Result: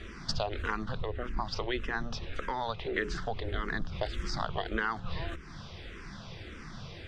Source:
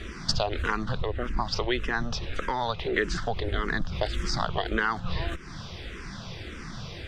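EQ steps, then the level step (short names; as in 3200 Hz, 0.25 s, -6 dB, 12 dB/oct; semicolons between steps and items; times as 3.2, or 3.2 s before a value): high shelf 6200 Hz -7 dB; notches 60/120/180/240/300/360/420 Hz; -5.0 dB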